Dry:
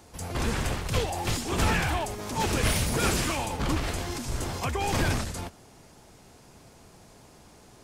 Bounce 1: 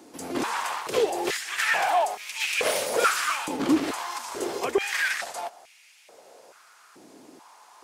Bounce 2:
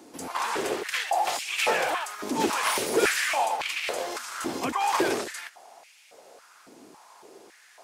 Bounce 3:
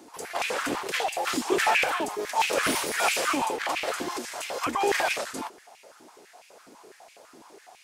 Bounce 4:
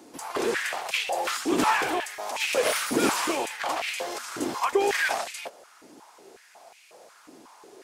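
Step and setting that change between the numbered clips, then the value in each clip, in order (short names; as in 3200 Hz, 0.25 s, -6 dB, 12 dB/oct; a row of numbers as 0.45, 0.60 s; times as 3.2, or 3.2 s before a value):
stepped high-pass, rate: 2.3, 3.6, 12, 5.5 Hz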